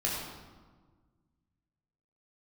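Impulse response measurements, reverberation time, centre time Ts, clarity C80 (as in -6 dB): 1.5 s, 76 ms, 2.5 dB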